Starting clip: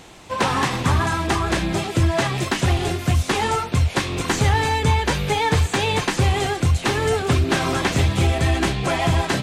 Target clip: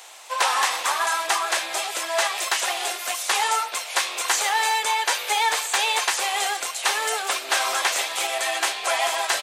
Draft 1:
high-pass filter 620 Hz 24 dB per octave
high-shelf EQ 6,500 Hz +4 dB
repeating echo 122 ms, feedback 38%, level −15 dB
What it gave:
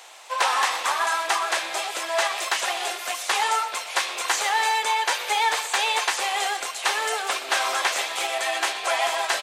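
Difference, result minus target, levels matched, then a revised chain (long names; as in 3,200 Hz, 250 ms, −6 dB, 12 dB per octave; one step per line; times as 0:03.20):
echo-to-direct +8.5 dB; 8,000 Hz band −2.5 dB
high-pass filter 620 Hz 24 dB per octave
high-shelf EQ 6,500 Hz +11 dB
repeating echo 122 ms, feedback 38%, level −23.5 dB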